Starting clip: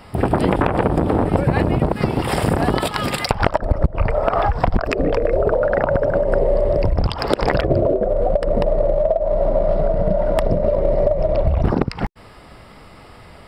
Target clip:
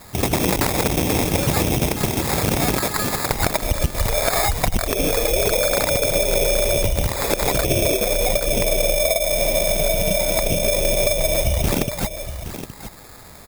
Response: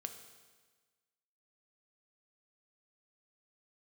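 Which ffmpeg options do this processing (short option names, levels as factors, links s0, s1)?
-filter_complex "[0:a]acrusher=samples=15:mix=1:aa=0.000001,crystalizer=i=2.5:c=0,acontrast=23,asplit=2[s0][s1];[s1]aecho=0:1:819:0.282[s2];[s0][s2]amix=inputs=2:normalize=0,volume=0.422"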